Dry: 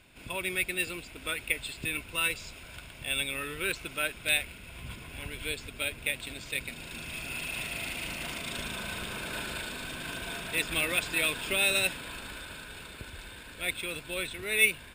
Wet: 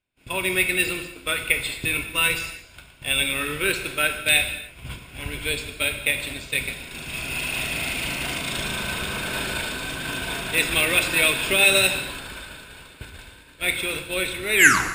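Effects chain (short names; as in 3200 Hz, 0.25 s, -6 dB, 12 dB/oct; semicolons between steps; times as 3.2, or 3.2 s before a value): tape stop at the end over 0.40 s; expander -37 dBFS; non-linear reverb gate 0.34 s falling, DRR 5.5 dB; gain +8 dB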